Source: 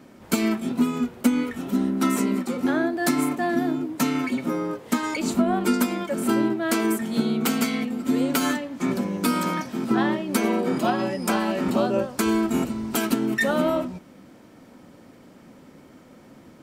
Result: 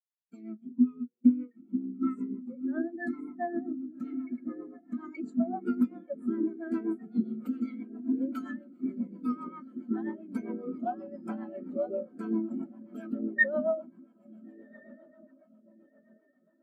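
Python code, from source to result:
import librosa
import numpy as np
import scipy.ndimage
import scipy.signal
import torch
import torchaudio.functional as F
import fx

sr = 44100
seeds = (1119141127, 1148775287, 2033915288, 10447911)

p1 = fx.fade_in_head(x, sr, length_s=0.64)
p2 = fx.low_shelf(p1, sr, hz=310.0, db=-9.5)
p3 = p2 + fx.echo_diffused(p2, sr, ms=1433, feedback_pct=64, wet_db=-7.0, dry=0)
p4 = fx.rotary(p3, sr, hz=7.5)
y = fx.spectral_expand(p4, sr, expansion=2.5)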